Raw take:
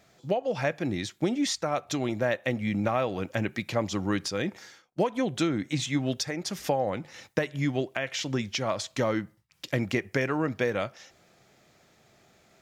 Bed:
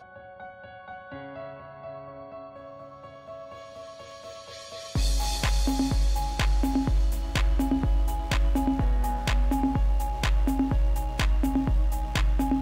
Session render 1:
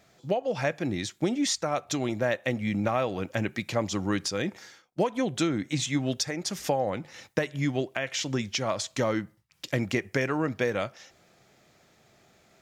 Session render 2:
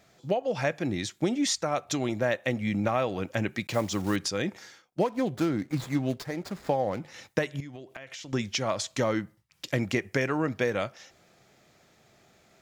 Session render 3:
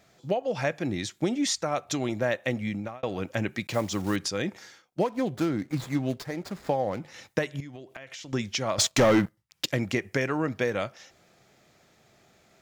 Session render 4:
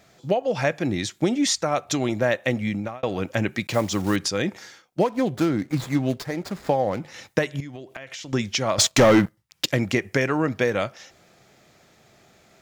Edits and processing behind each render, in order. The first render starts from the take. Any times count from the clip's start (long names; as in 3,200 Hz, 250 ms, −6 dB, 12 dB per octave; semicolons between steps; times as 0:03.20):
dynamic equaliser 7,300 Hz, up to +4 dB, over −50 dBFS, Q 1.2
0:03.67–0:04.17: one scale factor per block 5 bits; 0:05.01–0:07.01: running median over 15 samples; 0:07.60–0:08.33: downward compressor 10 to 1, threshold −38 dBFS
0:02.59–0:03.03: fade out; 0:08.78–0:09.66: leveller curve on the samples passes 3
level +5 dB